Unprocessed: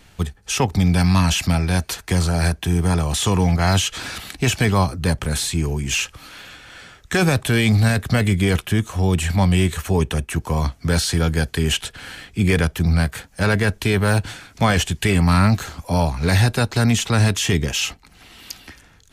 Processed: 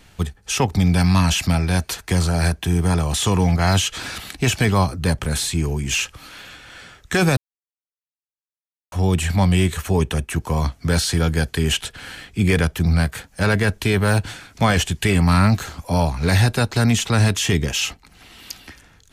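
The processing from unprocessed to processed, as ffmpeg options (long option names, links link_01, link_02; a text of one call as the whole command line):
ffmpeg -i in.wav -filter_complex "[0:a]asplit=3[link_01][link_02][link_03];[link_01]atrim=end=7.37,asetpts=PTS-STARTPTS,afade=type=out:start_time=7.366:duration=0.004:curve=hsin[link_04];[link_02]atrim=start=7.37:end=8.92,asetpts=PTS-STARTPTS,volume=0[link_05];[link_03]atrim=start=8.92,asetpts=PTS-STARTPTS,afade=type=in:duration=0.004:curve=hsin[link_06];[link_04][link_05][link_06]concat=n=3:v=0:a=1" out.wav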